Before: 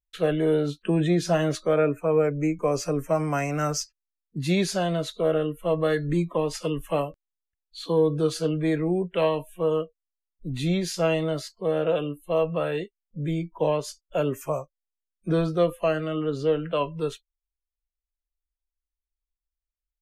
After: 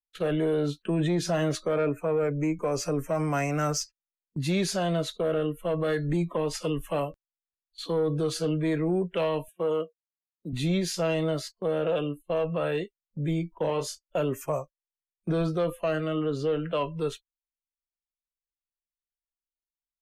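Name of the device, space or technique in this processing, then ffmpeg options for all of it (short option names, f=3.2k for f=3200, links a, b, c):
soft clipper into limiter: -filter_complex "[0:a]asoftclip=type=tanh:threshold=-14.5dB,alimiter=limit=-19.5dB:level=0:latency=1:release=27,asettb=1/sr,asplit=3[a][b][c];[a]atrim=end=11.984[d];[b]atrim=start=11.98:end=12.69,asetpts=PTS-STARTPTS,afade=t=in:d=0.004:c=qsin,afade=t=out:st=0.706:d=0.004:c=qsin,lowpass=11k[e];[c]atrim=start=12.686[f];[d][e]acrossfade=d=0.004:c1=hsin:c2=qsin[g];[g][f]acrossfade=d=0.004:c1=qsin:c2=hsin,agate=range=-18dB:threshold=-40dB:ratio=16:detection=peak,asettb=1/sr,asplit=3[h][i][j];[h]atrim=end=9.484[k];[i]atrim=start=9.48:end=10.53,asetpts=PTS-STARTPTS,afade=t=in:d=0.004:c=qsin,afade=t=out:st=1.046:d=0.004:c=qsin,highpass=190[l];[j]atrim=start=10.526[m];[k][l]acrossfade=d=0.004:c1=hsin:c2=qsin[n];[n][m]acrossfade=d=0.004:c1=qsin:c2=hsin,asettb=1/sr,asplit=3[o][p][q];[o]atrim=end=13.664[r];[p]atrim=start=13.66:end=14.16,asetpts=PTS-STARTPTS,afade=t=in:d=0.004:c=qsin,afade=t=out:st=0.496:d=0.004:c=qsin,asplit=2[s][t];[t]adelay=29,volume=-4.5dB[u];[s][u]amix=inputs=2:normalize=0,atrim=end_sample=22050[v];[q]atrim=start=14.156[w];[r][v]acrossfade=d=0.004:c1=hsin:c2=qsin[x];[x][w]acrossfade=d=0.004:c1=qsin:c2=hsin"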